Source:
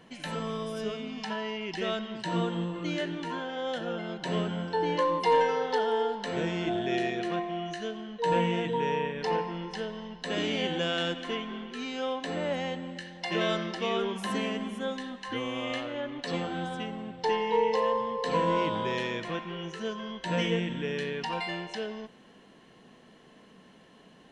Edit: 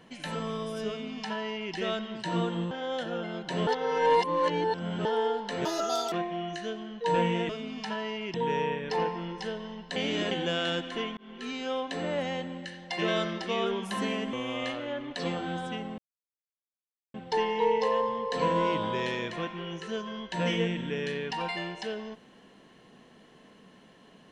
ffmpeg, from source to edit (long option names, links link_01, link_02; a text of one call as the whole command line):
ffmpeg -i in.wav -filter_complex "[0:a]asplit=13[link_01][link_02][link_03][link_04][link_05][link_06][link_07][link_08][link_09][link_10][link_11][link_12][link_13];[link_01]atrim=end=2.712[link_14];[link_02]atrim=start=3.458:end=4.422[link_15];[link_03]atrim=start=4.418:end=5.802,asetpts=PTS-STARTPTS,areverse[link_16];[link_04]atrim=start=5.798:end=6.404[link_17];[link_05]atrim=start=6.4:end=7.3,asetpts=PTS-STARTPTS,asetrate=84231,aresample=44100,atrim=end_sample=20780,asetpts=PTS-STARTPTS[link_18];[link_06]atrim=start=7.296:end=8.672[link_19];[link_07]atrim=start=0.888:end=1.742[link_20];[link_08]atrim=start=8.668:end=10.292[link_21];[link_09]atrim=start=10.288:end=10.642,asetpts=PTS-STARTPTS,areverse[link_22];[link_10]atrim=start=10.638:end=11.5,asetpts=PTS-STARTPTS,afade=type=out:start_time=0.858:duration=0.004:curve=hsin[link_23];[link_11]atrim=start=11.5:end=14.662,asetpts=PTS-STARTPTS,afade=type=in:duration=0.26[link_24];[link_12]atrim=start=15.408:end=17.06,asetpts=PTS-STARTPTS,afade=type=out:start_time=1.648:duration=0.004:curve=hsin,apad=pad_dur=1.16[link_25];[link_13]atrim=start=17.06,asetpts=PTS-STARTPTS,afade=type=in:duration=0.004:curve=hsin[link_26];[link_14][link_15]acrossfade=duration=0.004:curve1=hsin:curve2=hsin[link_27];[link_27][link_16]acrossfade=duration=0.004:curve1=hsin:curve2=hsin[link_28];[link_28][link_17]acrossfade=duration=0.004:curve1=hsin:curve2=hsin[link_29];[link_29][link_18]acrossfade=duration=0.004:curve1=hsin:curve2=hsin[link_30];[link_30][link_19]acrossfade=duration=0.004:curve1=hsin:curve2=hsin[link_31];[link_31][link_20]acrossfade=duration=0.004:curve1=hsin:curve2=hsin[link_32];[link_32][link_21]acrossfade=duration=0.004:curve1=hsin:curve2=hsin[link_33];[link_33][link_22]acrossfade=duration=0.004:curve1=hsin:curve2=hsin[link_34];[link_23][link_24]concat=n=2:v=0:a=1[link_35];[link_34][link_35]acrossfade=duration=0.004:curve1=hsin:curve2=hsin[link_36];[link_25][link_26]concat=n=2:v=0:a=1[link_37];[link_36][link_37]acrossfade=duration=0.004:curve1=hsin:curve2=hsin" out.wav